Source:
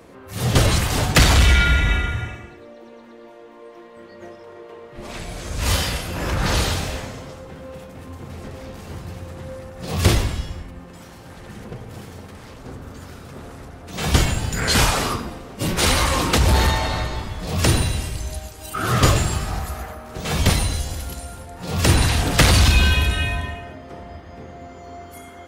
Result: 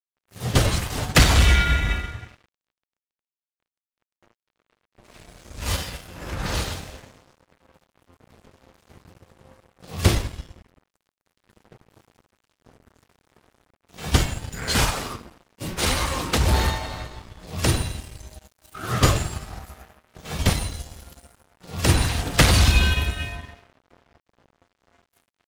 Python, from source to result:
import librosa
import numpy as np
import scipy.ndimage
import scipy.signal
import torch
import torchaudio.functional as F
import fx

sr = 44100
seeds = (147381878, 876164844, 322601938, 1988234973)

y = np.sign(x) * np.maximum(np.abs(x) - 10.0 ** (-33.5 / 20.0), 0.0)
y = fx.upward_expand(y, sr, threshold_db=-29.0, expansion=1.5)